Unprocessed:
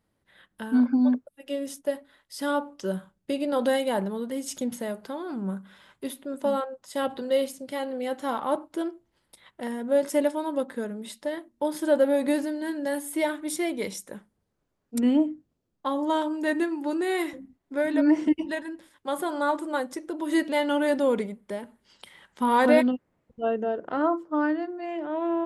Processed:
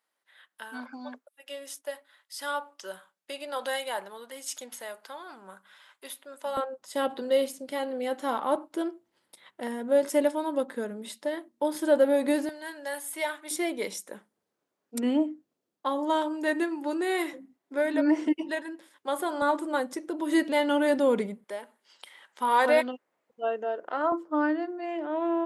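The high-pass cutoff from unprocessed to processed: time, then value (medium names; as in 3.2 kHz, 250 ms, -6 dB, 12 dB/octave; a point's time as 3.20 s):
880 Hz
from 6.57 s 230 Hz
from 12.49 s 770 Hz
from 13.51 s 310 Hz
from 19.42 s 130 Hz
from 21.44 s 530 Hz
from 24.12 s 240 Hz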